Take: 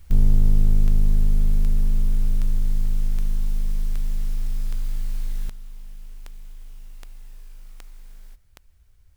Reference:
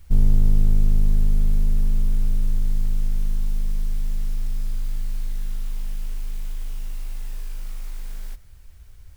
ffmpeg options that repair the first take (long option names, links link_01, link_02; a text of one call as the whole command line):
ffmpeg -i in.wav -af "adeclick=threshold=4,asetnsamples=nb_out_samples=441:pad=0,asendcmd='5.49 volume volume 11dB',volume=0dB" out.wav